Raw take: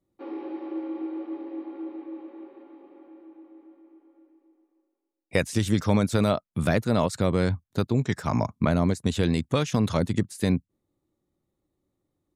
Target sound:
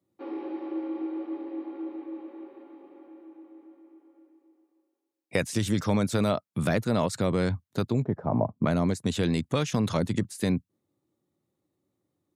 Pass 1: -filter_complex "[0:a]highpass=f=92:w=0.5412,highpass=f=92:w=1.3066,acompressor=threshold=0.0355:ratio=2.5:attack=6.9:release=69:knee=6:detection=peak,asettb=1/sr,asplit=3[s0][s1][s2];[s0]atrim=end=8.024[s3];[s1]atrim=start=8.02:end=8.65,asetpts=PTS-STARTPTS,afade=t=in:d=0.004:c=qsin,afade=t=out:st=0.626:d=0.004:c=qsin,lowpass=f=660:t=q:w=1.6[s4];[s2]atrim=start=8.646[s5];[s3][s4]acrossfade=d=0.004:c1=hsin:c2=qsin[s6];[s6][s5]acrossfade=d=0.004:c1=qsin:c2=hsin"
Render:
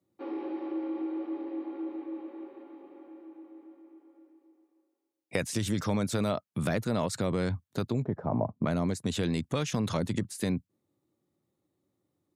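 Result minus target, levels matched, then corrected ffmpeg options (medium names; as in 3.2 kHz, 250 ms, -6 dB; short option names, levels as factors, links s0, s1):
compression: peak gain reduction +4.5 dB
-filter_complex "[0:a]highpass=f=92:w=0.5412,highpass=f=92:w=1.3066,acompressor=threshold=0.0841:ratio=2.5:attack=6.9:release=69:knee=6:detection=peak,asettb=1/sr,asplit=3[s0][s1][s2];[s0]atrim=end=8.024[s3];[s1]atrim=start=8.02:end=8.65,asetpts=PTS-STARTPTS,afade=t=in:d=0.004:c=qsin,afade=t=out:st=0.626:d=0.004:c=qsin,lowpass=f=660:t=q:w=1.6[s4];[s2]atrim=start=8.646[s5];[s3][s4]acrossfade=d=0.004:c1=hsin:c2=qsin[s6];[s6][s5]acrossfade=d=0.004:c1=qsin:c2=hsin"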